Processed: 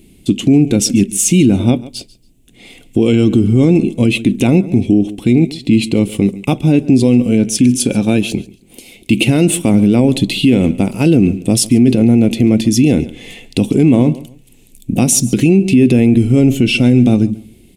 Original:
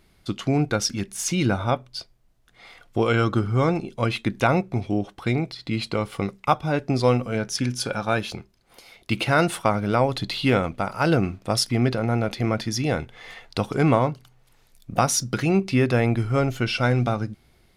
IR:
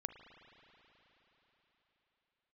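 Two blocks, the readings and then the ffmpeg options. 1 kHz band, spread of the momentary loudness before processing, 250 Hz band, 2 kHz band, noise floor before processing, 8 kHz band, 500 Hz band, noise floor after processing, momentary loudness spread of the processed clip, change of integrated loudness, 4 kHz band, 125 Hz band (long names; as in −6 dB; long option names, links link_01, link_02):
−4.5 dB, 8 LU, +15.5 dB, +4.0 dB, −60 dBFS, +12.5 dB, +7.0 dB, −46 dBFS, 8 LU, +11.5 dB, +7.5 dB, +10.0 dB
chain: -af "firequalizer=gain_entry='entry(110,0);entry(250,11);entry(580,-7);entry(1300,-22);entry(2600,2);entry(4800,-8);entry(7800,7);entry(11000,3)':delay=0.05:min_phase=1,aecho=1:1:140|280:0.0891|0.0196,alimiter=level_in=13dB:limit=-1dB:release=50:level=0:latency=1,volume=-1dB"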